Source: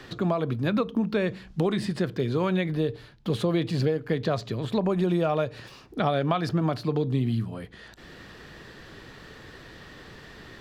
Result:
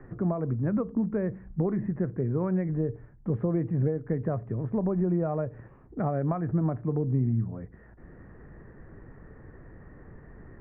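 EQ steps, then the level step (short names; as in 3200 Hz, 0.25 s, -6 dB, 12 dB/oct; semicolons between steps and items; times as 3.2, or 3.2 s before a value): Chebyshev low-pass 2000 Hz, order 4; air absorption 480 m; tilt -2.5 dB/oct; -5.5 dB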